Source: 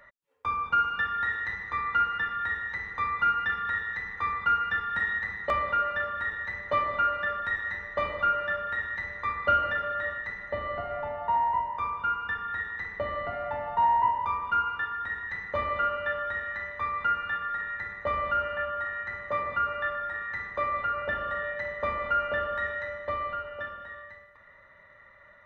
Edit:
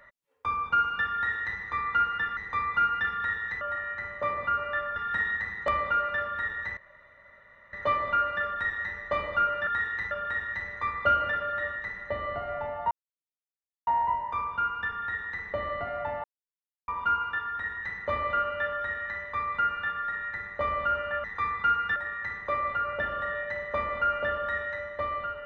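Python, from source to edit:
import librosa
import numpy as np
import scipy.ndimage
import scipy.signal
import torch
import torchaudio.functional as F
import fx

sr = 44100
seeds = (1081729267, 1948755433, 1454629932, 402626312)

y = fx.edit(x, sr, fx.duplicate(start_s=1.15, length_s=0.44, to_s=8.53),
    fx.cut(start_s=2.37, length_s=0.45),
    fx.swap(start_s=4.06, length_s=0.72, other_s=18.7, other_length_s=1.35),
    fx.insert_room_tone(at_s=6.59, length_s=0.96),
    fx.insert_silence(at_s=11.33, length_s=0.96),
    fx.silence(start_s=13.7, length_s=0.64), tone=tone)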